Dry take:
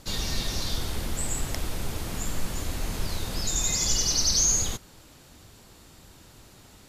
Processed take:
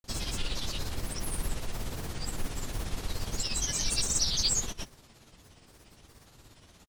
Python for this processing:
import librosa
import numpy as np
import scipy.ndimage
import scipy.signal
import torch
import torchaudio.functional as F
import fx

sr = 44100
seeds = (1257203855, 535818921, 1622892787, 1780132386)

y = fx.granulator(x, sr, seeds[0], grain_ms=100.0, per_s=17.0, spray_ms=100.0, spread_st=7)
y = F.gain(torch.from_numpy(y), -2.5).numpy()